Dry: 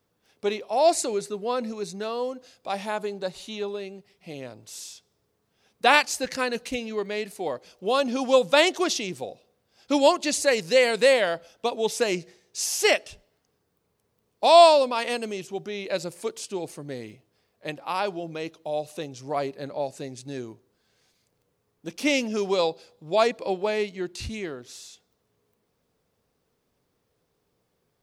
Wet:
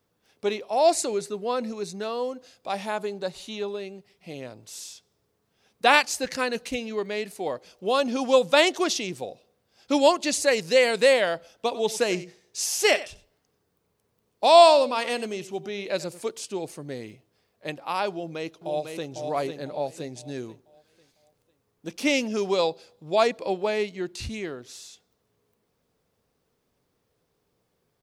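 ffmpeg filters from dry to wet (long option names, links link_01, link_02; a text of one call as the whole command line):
ffmpeg -i in.wav -filter_complex "[0:a]asplit=3[link_01][link_02][link_03];[link_01]afade=type=out:start_time=11.67:duration=0.02[link_04];[link_02]aecho=1:1:93:0.158,afade=type=in:start_time=11.67:duration=0.02,afade=type=out:start_time=16.2:duration=0.02[link_05];[link_03]afade=type=in:start_time=16.2:duration=0.02[link_06];[link_04][link_05][link_06]amix=inputs=3:normalize=0,asplit=2[link_07][link_08];[link_08]afade=type=in:start_time=18.11:duration=0.01,afade=type=out:start_time=19.1:duration=0.01,aecho=0:1:500|1000|1500|2000|2500:0.530884|0.212354|0.0849415|0.0339766|0.0135906[link_09];[link_07][link_09]amix=inputs=2:normalize=0" out.wav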